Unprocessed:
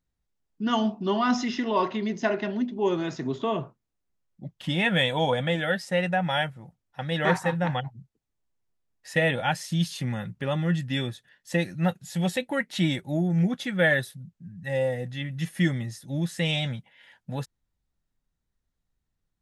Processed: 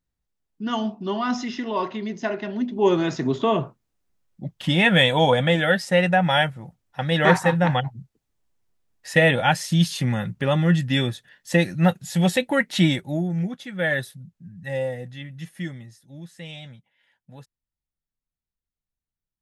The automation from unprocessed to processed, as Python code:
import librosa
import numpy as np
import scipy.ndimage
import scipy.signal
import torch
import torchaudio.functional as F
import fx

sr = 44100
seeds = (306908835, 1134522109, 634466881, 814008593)

y = fx.gain(x, sr, db=fx.line((2.46, -1.0), (2.86, 6.5), (12.81, 6.5), (13.65, -6.0), (13.99, 0.5), (14.69, 0.5), (16.12, -12.0)))